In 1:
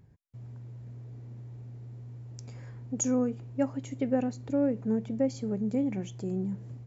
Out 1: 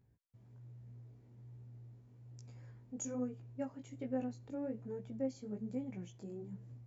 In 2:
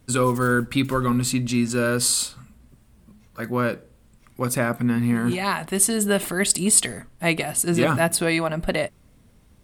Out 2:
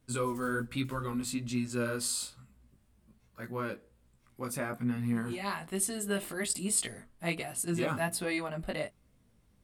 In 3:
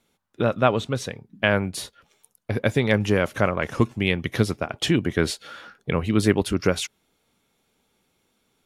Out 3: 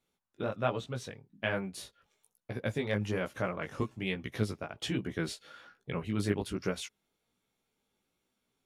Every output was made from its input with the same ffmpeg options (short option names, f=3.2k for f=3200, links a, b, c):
-af "flanger=delay=15.5:depth=4.6:speed=1.2,volume=-9dB"